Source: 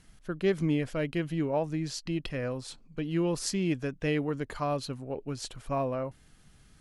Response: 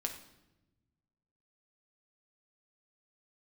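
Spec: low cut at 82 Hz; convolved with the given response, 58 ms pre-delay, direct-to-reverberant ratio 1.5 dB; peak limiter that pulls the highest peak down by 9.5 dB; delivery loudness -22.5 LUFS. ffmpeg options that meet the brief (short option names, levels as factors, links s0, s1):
-filter_complex "[0:a]highpass=82,alimiter=level_in=1.06:limit=0.0631:level=0:latency=1,volume=0.944,asplit=2[s0][s1];[1:a]atrim=start_sample=2205,adelay=58[s2];[s1][s2]afir=irnorm=-1:irlink=0,volume=0.75[s3];[s0][s3]amix=inputs=2:normalize=0,volume=2.99"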